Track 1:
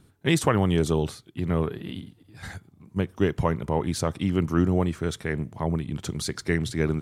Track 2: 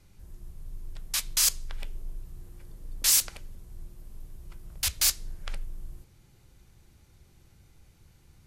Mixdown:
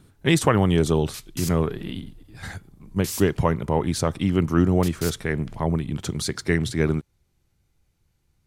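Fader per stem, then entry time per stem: +3.0 dB, -10.5 dB; 0.00 s, 0.00 s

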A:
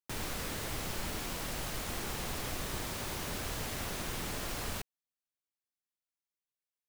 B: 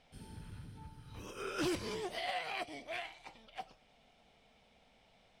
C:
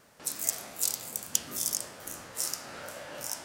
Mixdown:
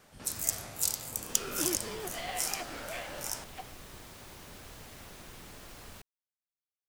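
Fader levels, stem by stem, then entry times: -11.0 dB, -0.5 dB, -1.0 dB; 1.20 s, 0.00 s, 0.00 s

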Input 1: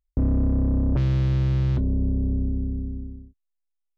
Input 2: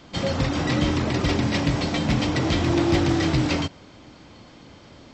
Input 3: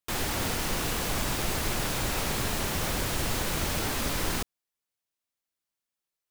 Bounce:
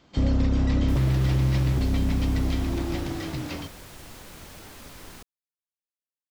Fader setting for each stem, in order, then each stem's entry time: -1.0 dB, -11.0 dB, -15.0 dB; 0.00 s, 0.00 s, 0.80 s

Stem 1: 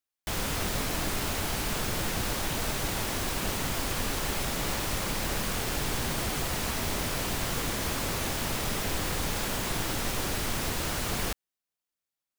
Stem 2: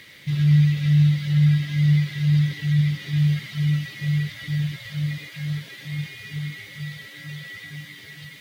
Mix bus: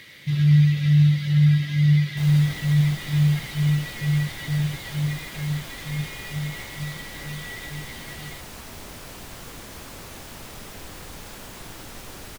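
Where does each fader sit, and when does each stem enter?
-9.0 dB, +0.5 dB; 1.90 s, 0.00 s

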